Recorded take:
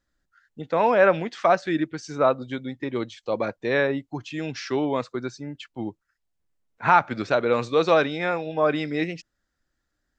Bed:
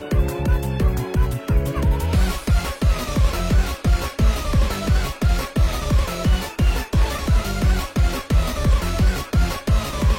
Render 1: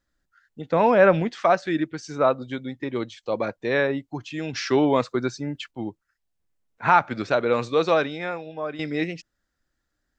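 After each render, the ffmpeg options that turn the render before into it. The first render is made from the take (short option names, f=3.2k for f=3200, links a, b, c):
-filter_complex "[0:a]asettb=1/sr,asplit=3[a][b][c];[a]atrim=end=0.714[d];[b]atrim=start=0.71:end=1.33,asetpts=PTS-STARTPTS,afade=t=in:d=0.004:c=qsin,afade=t=out:st=0.616:d=0.004:c=qsin,lowshelf=f=220:g=11.5[e];[c]atrim=start=1.326[f];[d][e]acrossfade=d=0.004:c1=hsin:c2=qsin[g];[g][f]acrossfade=d=0.004:c1=qsin:c2=hsin,asettb=1/sr,asplit=3[h][i][j];[h]atrim=end=4.534[k];[i]atrim=start=4.53:end=5.71,asetpts=PTS-STARTPTS,afade=t=in:d=0.004:c=qsin,afade=t=out:st=1.176:d=0.004:c=qsin,acontrast=30[l];[j]atrim=start=5.706[m];[k][l]acrossfade=d=0.004:c1=hsin:c2=qsin[n];[n][m]acrossfade=d=0.004:c1=qsin:c2=hsin,asplit=2[o][p];[o]atrim=end=8.79,asetpts=PTS-STARTPTS,afade=t=out:st=7.7:d=1.09:silence=0.251189[q];[p]atrim=start=8.79,asetpts=PTS-STARTPTS,afade=t=in:d=0.004:c=hsin:silence=0.251189[r];[q][r]concat=n=2:v=0:a=1"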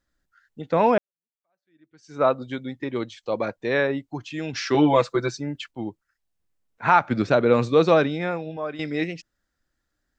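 -filter_complex "[0:a]asettb=1/sr,asplit=3[a][b][c];[a]atrim=end=4.744[d];[b]atrim=start=4.74:end=5.37,asetpts=PTS-STARTPTS,afade=t=in:d=0.004:c=qsin,afade=t=out:st=0.626:d=0.004:c=qsin,aecho=1:1:6:0.9,atrim=end_sample=27783[e];[c]atrim=start=5.366[f];[d][e]acrossfade=d=0.004:c1=hsin:c2=qsin[g];[g][f]acrossfade=d=0.004:c1=qsin:c2=hsin,asettb=1/sr,asplit=3[h][i][j];[h]atrim=end=7.104[k];[i]atrim=start=7.1:end=8.57,asetpts=PTS-STARTPTS,afade=t=in:d=0.004:c=qsin,afade=t=out:st=1.466:d=0.004:c=qsin,equalizer=f=150:w=0.42:g=8.5[l];[j]atrim=start=8.566[m];[k][l]acrossfade=d=0.004:c1=hsin:c2=qsin[n];[n][m]acrossfade=d=0.004:c1=qsin:c2=hsin,asplit=2[o][p];[o]atrim=end=0.98,asetpts=PTS-STARTPTS,afade=t=out:st=0.976:d=0.004:c=hsin[q];[p]atrim=start=0.98,asetpts=PTS-STARTPTS,afade=t=in:d=1.24:c=exp[r];[q][r]concat=n=2:v=0:a=1"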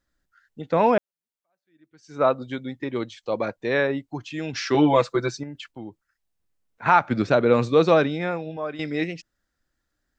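-filter_complex "[0:a]asettb=1/sr,asplit=3[a][b][c];[a]atrim=end=5.434[d];[b]atrim=start=5.43:end=6.86,asetpts=PTS-STARTPTS,afade=t=in:d=0.004:c=qsin,afade=t=out:st=1.426:d=0.004:c=qsin,acompressor=threshold=-34dB:ratio=3:attack=3.2:release=140:knee=1:detection=peak[e];[c]atrim=start=6.856[f];[d][e]acrossfade=d=0.004:c1=hsin:c2=qsin[g];[g][f]acrossfade=d=0.004:c1=qsin:c2=hsin"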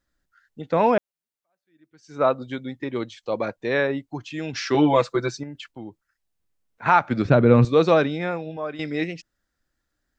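-filter_complex "[0:a]asettb=1/sr,asplit=3[a][b][c];[a]atrim=end=7.254[d];[b]atrim=start=7.25:end=7.65,asetpts=PTS-STARTPTS,afade=t=in:d=0.004:c=qsin,afade=t=out:st=0.396:d=0.004:c=qsin,bass=f=250:g=12,treble=f=4k:g=-10[e];[c]atrim=start=7.646[f];[d][e]acrossfade=d=0.004:c1=hsin:c2=qsin[g];[g][f]acrossfade=d=0.004:c1=qsin:c2=hsin"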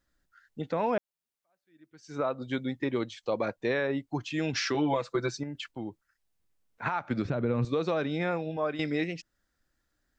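-af "acompressor=threshold=-19dB:ratio=6,alimiter=limit=-18.5dB:level=0:latency=1:release=358"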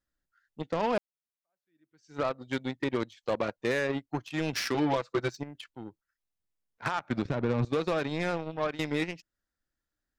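-af "aeval=exprs='0.126*(cos(1*acos(clip(val(0)/0.126,-1,1)))-cos(1*PI/2))+0.0126*(cos(7*acos(clip(val(0)/0.126,-1,1)))-cos(7*PI/2))':c=same"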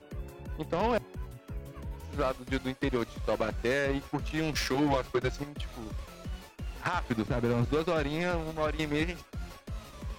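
-filter_complex "[1:a]volume=-21.5dB[a];[0:a][a]amix=inputs=2:normalize=0"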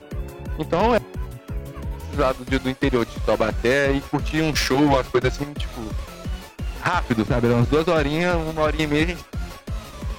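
-af "volume=10dB"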